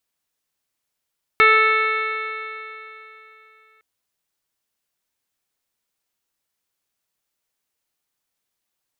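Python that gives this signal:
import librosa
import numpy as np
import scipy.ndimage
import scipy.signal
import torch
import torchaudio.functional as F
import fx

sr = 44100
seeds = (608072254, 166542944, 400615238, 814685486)

y = fx.additive_stiff(sr, length_s=2.41, hz=436.0, level_db=-19, upper_db=(-13.5, 6.0, 0.0, 6, -6.0, -19.5, -10.0, -17.0), decay_s=3.17, stiffness=0.001)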